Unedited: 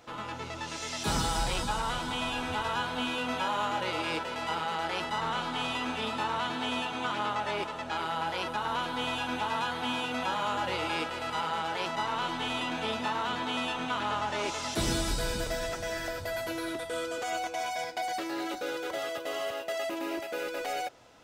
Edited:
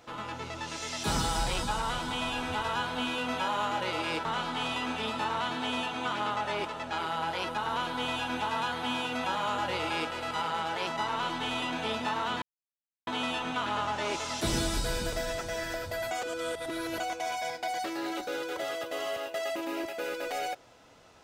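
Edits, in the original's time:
4.25–5.24 s: delete
13.41 s: insert silence 0.65 s
16.45–17.34 s: reverse

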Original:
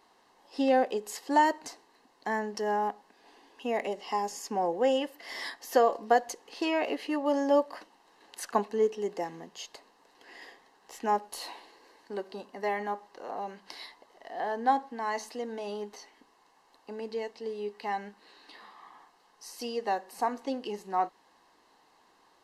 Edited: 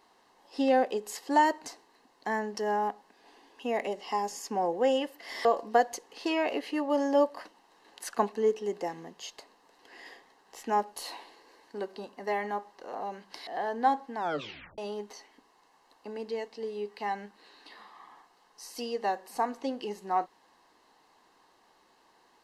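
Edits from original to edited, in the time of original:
5.45–5.81 s: delete
13.83–14.30 s: delete
14.99 s: tape stop 0.62 s

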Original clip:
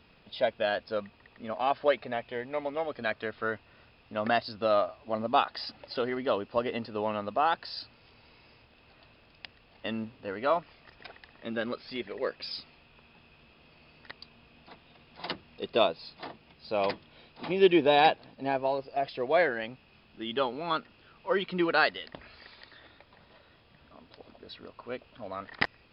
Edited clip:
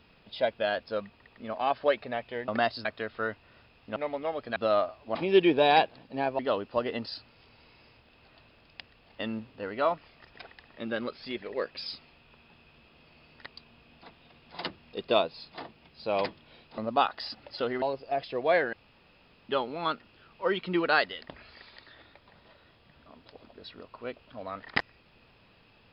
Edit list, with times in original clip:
2.48–3.08 s: swap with 4.19–4.56 s
5.15–6.19 s: swap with 17.43–18.67 s
6.87–7.72 s: delete
19.58–20.34 s: room tone

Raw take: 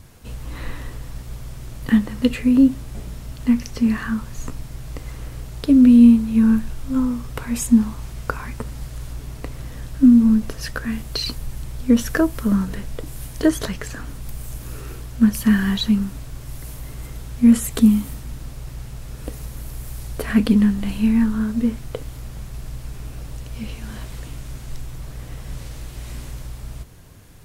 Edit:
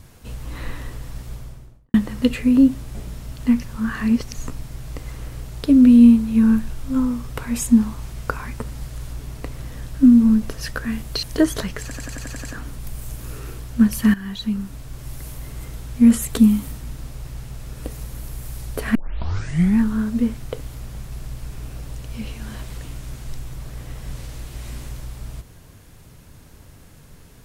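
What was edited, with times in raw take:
1.26–1.94 s: studio fade out
3.64–4.34 s: reverse
11.23–13.28 s: delete
13.87 s: stutter 0.09 s, 8 plays
15.56–16.47 s: fade in, from -14.5 dB
20.37 s: tape start 0.84 s

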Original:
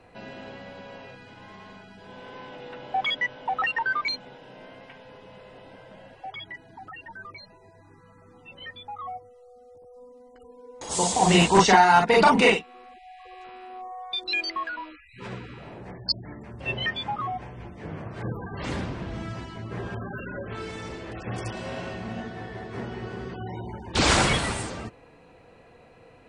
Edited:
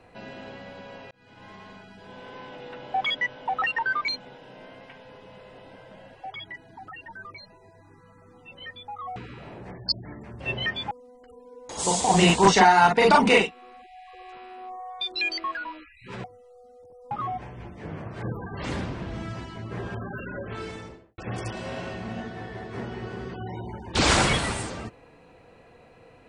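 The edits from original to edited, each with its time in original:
1.11–1.47 s: fade in
9.16–10.03 s: swap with 15.36–17.11 s
20.63–21.18 s: studio fade out

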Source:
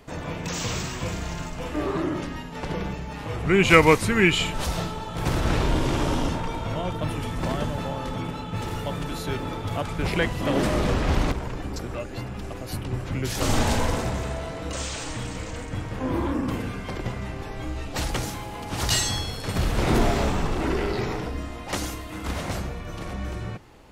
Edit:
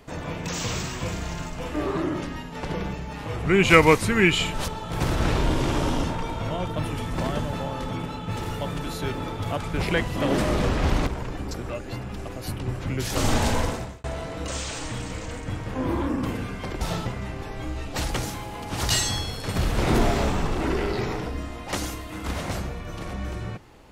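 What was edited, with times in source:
4.68–4.93 s: move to 17.06 s
13.87–14.29 s: fade out

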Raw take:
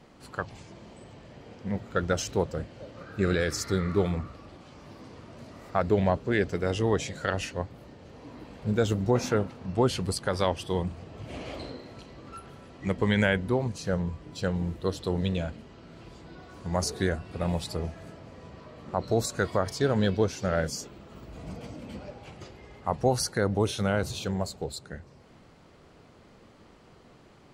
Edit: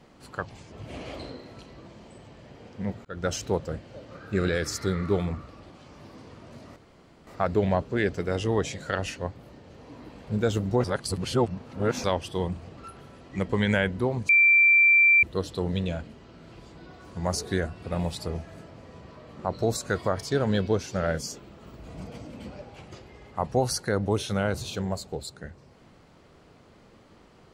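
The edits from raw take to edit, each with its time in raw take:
1.91–2.16 s: fade in
5.62 s: insert room tone 0.51 s
9.19–10.39 s: reverse
11.12–12.26 s: move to 0.72 s
13.78–14.72 s: bleep 2.35 kHz -14.5 dBFS

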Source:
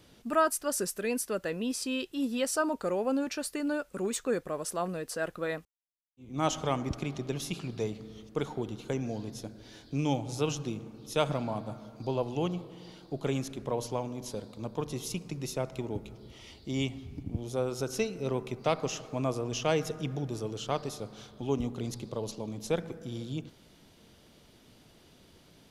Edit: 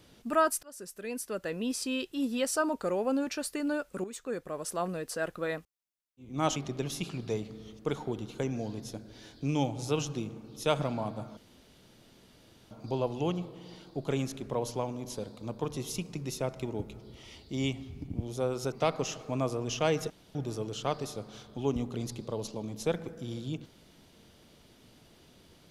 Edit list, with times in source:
0.63–1.67 s: fade in, from -23.5 dB
4.04–4.80 s: fade in, from -12 dB
6.56–7.06 s: delete
11.87 s: insert room tone 1.34 s
17.88–18.56 s: delete
19.94–20.19 s: room tone

